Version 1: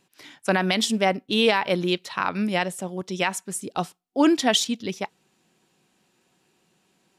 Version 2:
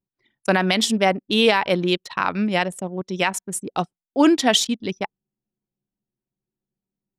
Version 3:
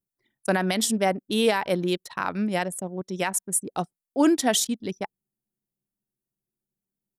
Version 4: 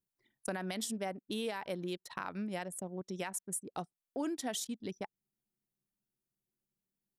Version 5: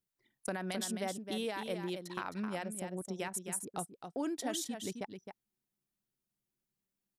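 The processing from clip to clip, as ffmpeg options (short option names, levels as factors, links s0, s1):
-af "anlmdn=3.98,volume=1.41"
-af "firequalizer=gain_entry='entry(670,0);entry(1100,-3);entry(1600,-1);entry(2600,-6);entry(10000,10)':delay=0.05:min_phase=1,volume=0.631"
-af "acompressor=threshold=0.0158:ratio=3,volume=0.708"
-af "aecho=1:1:263:0.422"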